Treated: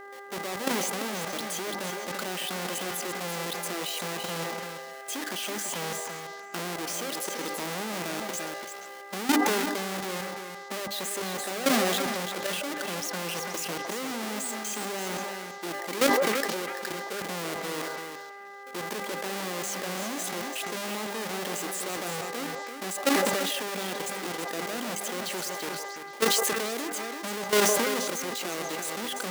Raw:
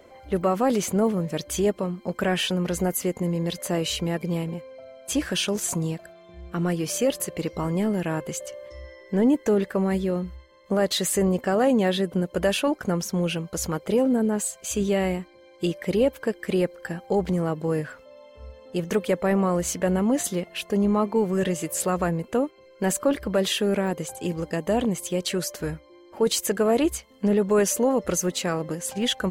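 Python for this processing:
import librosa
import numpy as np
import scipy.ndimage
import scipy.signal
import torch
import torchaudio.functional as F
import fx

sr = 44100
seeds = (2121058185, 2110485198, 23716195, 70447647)

y = fx.halfwave_hold(x, sr)
y = scipy.signal.sosfilt(scipy.signal.butter(4, 230.0, 'highpass', fs=sr, output='sos'), y)
y = fx.high_shelf(y, sr, hz=2100.0, db=6.0)
y = fx.hum_notches(y, sr, base_hz=50, count=6)
y = fx.level_steps(y, sr, step_db=14)
y = fx.echo_stepped(y, sr, ms=159, hz=690.0, octaves=1.4, feedback_pct=70, wet_db=-6)
y = fx.dmg_buzz(y, sr, base_hz=400.0, harmonics=5, level_db=-39.0, tilt_db=-2, odd_only=False)
y = y + 10.0 ** (-8.5 / 20.0) * np.pad(y, (int(339 * sr / 1000.0), 0))[:len(y)]
y = fx.sustainer(y, sr, db_per_s=23.0)
y = F.gain(torch.from_numpy(y), -6.0).numpy()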